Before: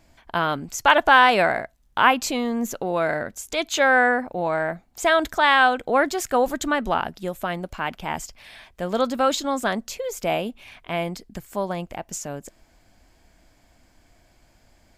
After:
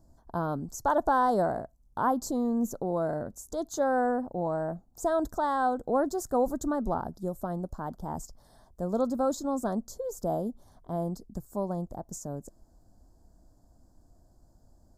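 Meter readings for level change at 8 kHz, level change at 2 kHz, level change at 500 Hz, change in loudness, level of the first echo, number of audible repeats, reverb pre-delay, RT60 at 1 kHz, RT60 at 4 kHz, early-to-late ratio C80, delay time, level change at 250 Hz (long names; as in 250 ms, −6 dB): −9.5 dB, −20.5 dB, −6.0 dB, −8.5 dB, no echo audible, no echo audible, no reverb audible, no reverb audible, no reverb audible, no reverb audible, no echo audible, −2.5 dB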